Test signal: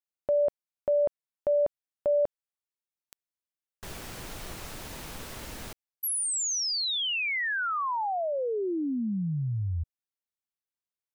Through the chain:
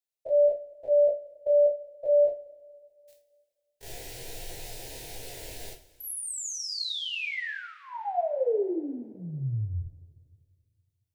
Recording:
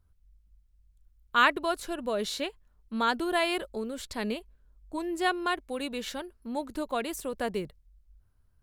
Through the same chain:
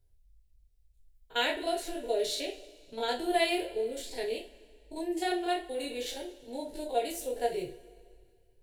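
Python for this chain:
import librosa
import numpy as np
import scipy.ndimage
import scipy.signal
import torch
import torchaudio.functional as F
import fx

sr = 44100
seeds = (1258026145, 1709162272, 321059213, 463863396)

y = fx.spec_steps(x, sr, hold_ms=50)
y = fx.fixed_phaser(y, sr, hz=490.0, stages=4)
y = fx.rev_double_slope(y, sr, seeds[0], early_s=0.27, late_s=2.1, knee_db=-21, drr_db=0.0)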